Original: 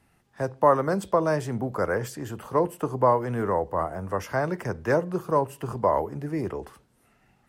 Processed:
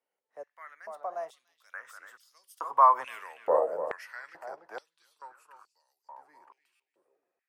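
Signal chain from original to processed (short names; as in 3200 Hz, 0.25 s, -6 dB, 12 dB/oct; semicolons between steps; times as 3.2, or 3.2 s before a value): Doppler pass-by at 3.16, 28 m/s, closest 6.6 m; on a send: darkening echo 0.29 s, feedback 25%, low-pass 2600 Hz, level -9 dB; on the sum: stuck buffer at 6.75, samples 256, times 7; stepped high-pass 2.3 Hz 520–4900 Hz; gain -1 dB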